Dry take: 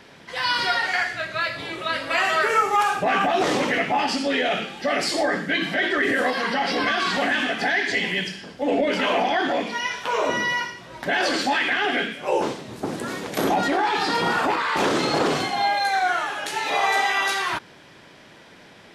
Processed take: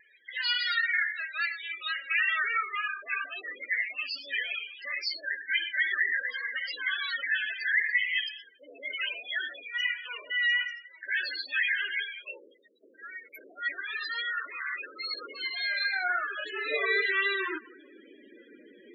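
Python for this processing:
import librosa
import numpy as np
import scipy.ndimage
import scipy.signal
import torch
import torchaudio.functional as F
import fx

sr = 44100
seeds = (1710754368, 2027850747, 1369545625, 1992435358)

y = fx.fixed_phaser(x, sr, hz=340.0, stages=4)
y = fx.echo_tape(y, sr, ms=194, feedback_pct=40, wet_db=-20.5, lp_hz=2900.0, drive_db=18.0, wow_cents=17)
y = fx.dynamic_eq(y, sr, hz=7200.0, q=0.78, threshold_db=-43.0, ratio=4.0, max_db=-4)
y = fx.spec_topn(y, sr, count=16)
y = fx.filter_sweep_highpass(y, sr, from_hz=2000.0, to_hz=290.0, start_s=15.03, end_s=17.2, q=1.3)
y = fx.spec_gate(y, sr, threshold_db=-30, keep='strong')
y = fx.vibrato(y, sr, rate_hz=3.6, depth_cents=28.0)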